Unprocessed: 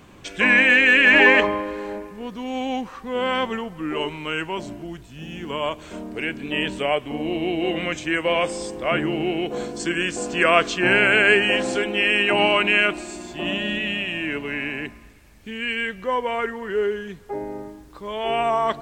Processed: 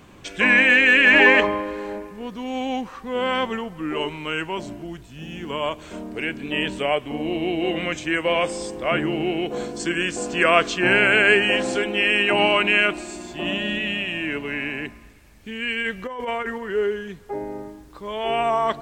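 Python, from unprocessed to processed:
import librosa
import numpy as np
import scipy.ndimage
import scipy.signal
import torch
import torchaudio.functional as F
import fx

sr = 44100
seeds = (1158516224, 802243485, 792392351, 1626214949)

y = fx.over_compress(x, sr, threshold_db=-26.0, ratio=-0.5, at=(15.81, 16.58))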